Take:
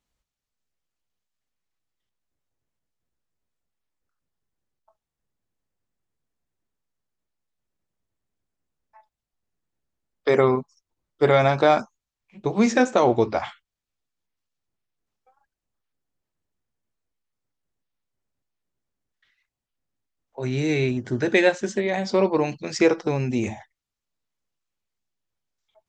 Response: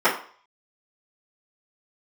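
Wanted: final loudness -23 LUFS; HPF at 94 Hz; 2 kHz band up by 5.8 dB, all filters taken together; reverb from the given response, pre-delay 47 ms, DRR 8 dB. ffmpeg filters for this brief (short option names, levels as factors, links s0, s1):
-filter_complex "[0:a]highpass=94,equalizer=f=2000:t=o:g=7,asplit=2[s0][s1];[1:a]atrim=start_sample=2205,adelay=47[s2];[s1][s2]afir=irnorm=-1:irlink=0,volume=0.0376[s3];[s0][s3]amix=inputs=2:normalize=0,volume=0.708"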